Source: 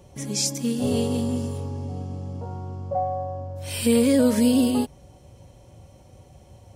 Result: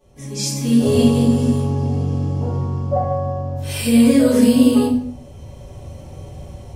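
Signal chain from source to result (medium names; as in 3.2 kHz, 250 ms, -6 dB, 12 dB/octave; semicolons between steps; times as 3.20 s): level rider gain up to 14 dB; simulated room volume 94 m³, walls mixed, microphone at 2.9 m; trim -14 dB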